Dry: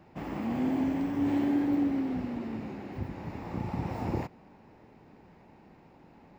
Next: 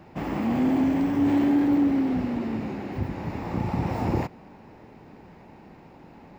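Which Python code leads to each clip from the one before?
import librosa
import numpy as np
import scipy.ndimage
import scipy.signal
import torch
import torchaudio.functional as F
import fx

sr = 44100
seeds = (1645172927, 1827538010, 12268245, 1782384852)

y = 10.0 ** (-21.0 / 20.0) * np.tanh(x / 10.0 ** (-21.0 / 20.0))
y = y * librosa.db_to_amplitude(7.5)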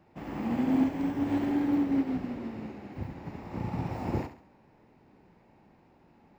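y = fx.echo_feedback(x, sr, ms=69, feedback_pct=39, wet_db=-6.5)
y = fx.upward_expand(y, sr, threshold_db=-35.0, expansion=1.5)
y = y * librosa.db_to_amplitude(-4.0)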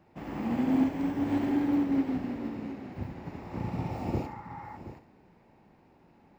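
y = x + 10.0 ** (-13.5 / 20.0) * np.pad(x, (int(723 * sr / 1000.0), 0))[:len(x)]
y = fx.spec_repair(y, sr, seeds[0], start_s=3.74, length_s=1.0, low_hz=800.0, high_hz=2200.0, source='before')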